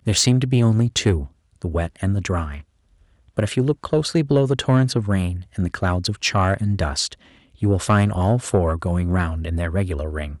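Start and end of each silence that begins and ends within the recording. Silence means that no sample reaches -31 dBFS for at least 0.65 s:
2.6–3.37

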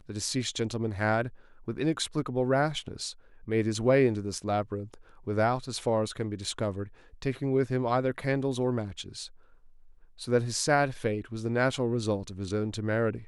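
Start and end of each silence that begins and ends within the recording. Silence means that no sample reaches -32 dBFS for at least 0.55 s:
9.24–10.22

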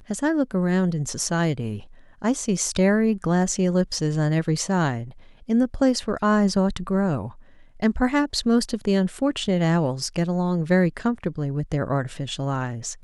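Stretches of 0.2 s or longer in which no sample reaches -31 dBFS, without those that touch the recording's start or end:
1.79–2.22
5.09–5.49
7.28–7.82

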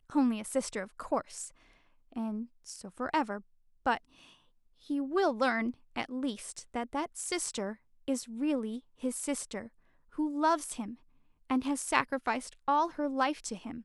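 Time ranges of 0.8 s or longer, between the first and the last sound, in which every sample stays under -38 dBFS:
3.97–4.9

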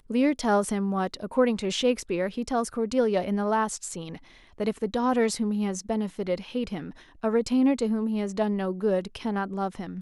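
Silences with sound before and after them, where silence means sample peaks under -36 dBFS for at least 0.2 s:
4.17–4.58
6.91–7.23

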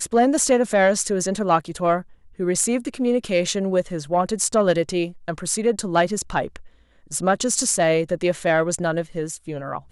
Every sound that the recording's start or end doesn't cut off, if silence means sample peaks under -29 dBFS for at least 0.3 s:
2.39–6.56

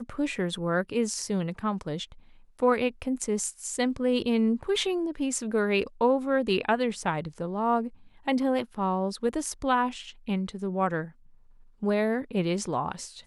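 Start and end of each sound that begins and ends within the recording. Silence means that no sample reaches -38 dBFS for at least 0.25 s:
2.59–7.88
8.27–11.08

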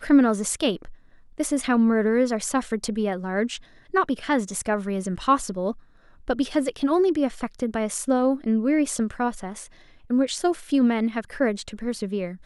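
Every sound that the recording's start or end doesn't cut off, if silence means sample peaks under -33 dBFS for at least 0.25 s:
1.4–3.57
3.94–5.72
6.28–9.64

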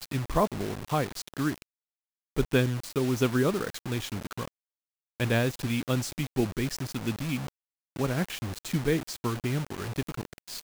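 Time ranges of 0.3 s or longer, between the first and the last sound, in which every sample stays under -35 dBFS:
1.62–2.36
4.48–5.2
7.49–7.96

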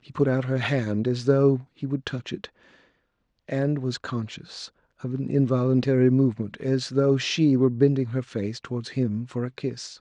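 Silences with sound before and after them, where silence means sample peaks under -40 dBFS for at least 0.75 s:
2.47–3.49

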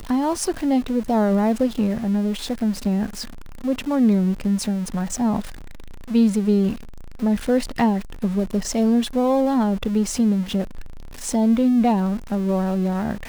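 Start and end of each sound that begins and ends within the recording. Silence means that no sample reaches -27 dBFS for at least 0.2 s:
3.64–5.46
6.11–6.75
7.22–10.8

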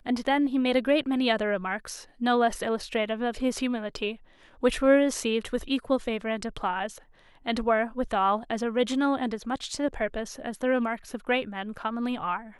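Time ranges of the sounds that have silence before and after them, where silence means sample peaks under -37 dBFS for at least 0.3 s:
4.63–6.98

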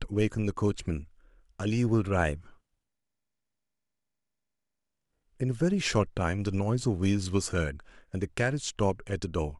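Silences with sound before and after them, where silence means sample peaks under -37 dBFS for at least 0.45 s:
1.03–1.6
2.37–5.41

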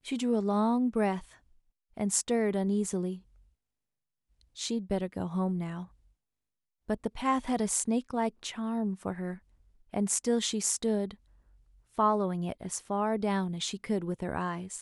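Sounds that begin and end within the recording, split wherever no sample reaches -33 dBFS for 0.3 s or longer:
1.98–3.14
4.59–5.81
6.9–9.34
9.94–11.11

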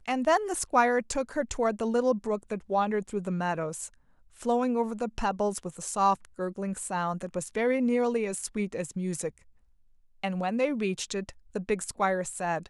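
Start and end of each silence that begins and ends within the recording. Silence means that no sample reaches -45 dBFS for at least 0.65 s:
9.38–10.23

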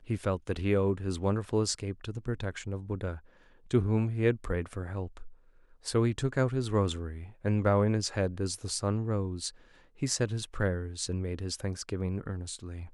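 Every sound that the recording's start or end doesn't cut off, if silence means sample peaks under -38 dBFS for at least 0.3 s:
3.71–5.27
5.86–9.5

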